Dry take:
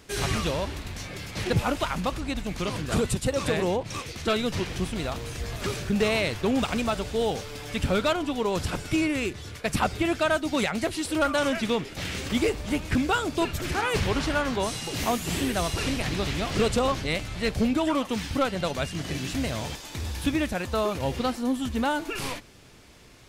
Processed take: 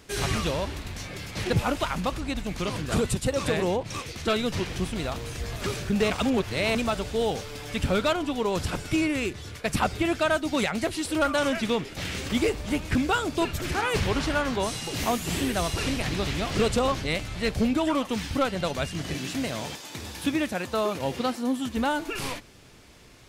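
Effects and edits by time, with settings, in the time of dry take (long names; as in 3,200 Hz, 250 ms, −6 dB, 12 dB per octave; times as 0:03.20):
0:06.10–0:06.75: reverse
0:19.14–0:21.77: high-pass filter 140 Hz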